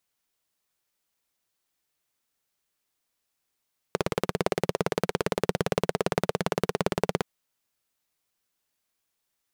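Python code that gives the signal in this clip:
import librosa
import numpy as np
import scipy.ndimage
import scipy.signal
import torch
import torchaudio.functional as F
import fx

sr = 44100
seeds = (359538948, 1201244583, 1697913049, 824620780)

y = fx.engine_single(sr, seeds[0], length_s=3.27, rpm=2100, resonances_hz=(180.0, 420.0))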